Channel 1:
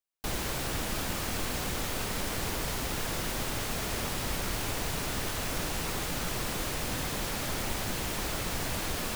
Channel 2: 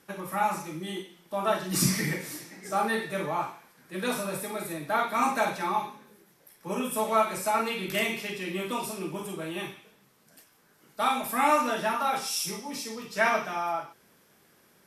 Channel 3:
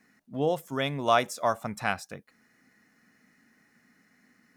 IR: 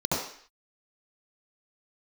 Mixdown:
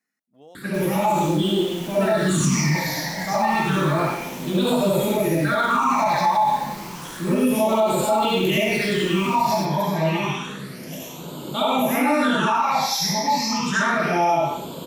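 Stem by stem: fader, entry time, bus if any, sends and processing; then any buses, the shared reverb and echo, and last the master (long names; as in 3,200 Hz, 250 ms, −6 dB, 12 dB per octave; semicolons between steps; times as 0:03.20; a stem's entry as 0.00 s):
−7.0 dB, 0.50 s, no send, no processing
+3.0 dB, 0.55 s, send −6 dB, all-pass phaser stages 8, 0.3 Hz, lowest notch 370–1,800 Hz; envelope flattener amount 50%
−18.5 dB, 0.00 s, no send, brickwall limiter −18 dBFS, peak gain reduction 9 dB; high-shelf EQ 4,700 Hz +9.5 dB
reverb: on, RT60 0.55 s, pre-delay 66 ms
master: low-shelf EQ 180 Hz −11.5 dB; brickwall limiter −11 dBFS, peak gain reduction 8.5 dB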